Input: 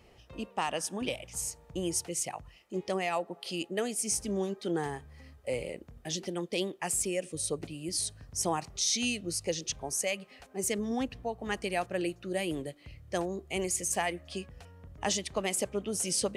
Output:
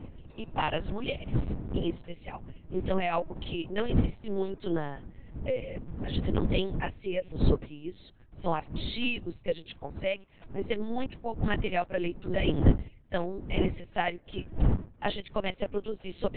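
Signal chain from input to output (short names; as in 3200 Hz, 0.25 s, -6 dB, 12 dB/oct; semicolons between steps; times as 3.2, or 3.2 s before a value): wind noise 150 Hz -36 dBFS; LPC vocoder at 8 kHz pitch kept; upward expander 1.5:1, over -52 dBFS; gain +7 dB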